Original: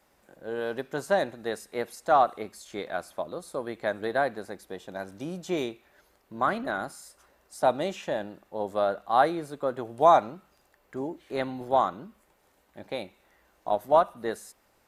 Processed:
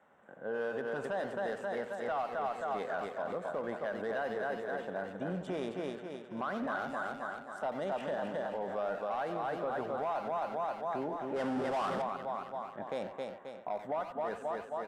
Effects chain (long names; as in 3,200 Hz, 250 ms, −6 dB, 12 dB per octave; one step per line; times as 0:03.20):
adaptive Wiener filter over 9 samples
on a send: repeating echo 266 ms, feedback 49%, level −7.5 dB
on the sum: downward compressor, threshold −25 dBFS, peak gain reduction 11.5 dB
0:11.36–0:12.02: power curve on the samples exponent 0.5
loudspeaker in its box 160–9,400 Hz, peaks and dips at 330 Hz −9 dB, 1,500 Hz +3 dB, 2,400 Hz −7 dB, 4,100 Hz −7 dB, 6,600 Hz −8 dB
soft clipping −20.5 dBFS, distortion −19 dB
brickwall limiter −30.5 dBFS, peak gain reduction 9.5 dB
far-end echo of a speakerphone 90 ms, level −7 dB
level +2.5 dB